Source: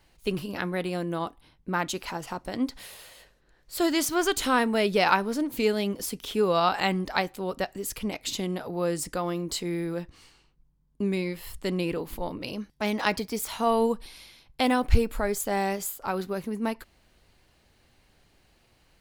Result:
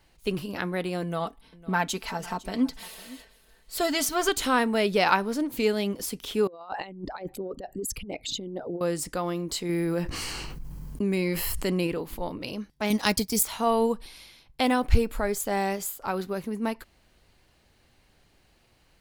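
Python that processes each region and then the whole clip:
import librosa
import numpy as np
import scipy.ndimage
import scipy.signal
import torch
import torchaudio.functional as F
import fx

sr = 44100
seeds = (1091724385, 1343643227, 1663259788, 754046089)

y = fx.chain(x, sr, fx.comb(ms=4.5, depth=0.64),
    fx.echo_single(ms=505, db=-19.5), at=(1.02, 4.29))
y = fx.chain(y, sr, fx.envelope_sharpen(power=2.0),
    fx.peak_eq(hz=1300.0, db=-6.5, octaves=2.6),
    fx.over_compress(threshold_db=-34.0, ratio=-0.5), at=(6.47, 8.81))
y = fx.chain(y, sr, fx.high_shelf(hz=9500.0, db=5.0),
    fx.notch(hz=3600.0, q=7.3),
    fx.env_flatten(amount_pct=70), at=(9.69, 11.87))
y = fx.chain(y, sr, fx.bass_treble(bass_db=10, treble_db=14),
    fx.transient(attack_db=-3, sustain_db=-11), at=(12.9, 13.43))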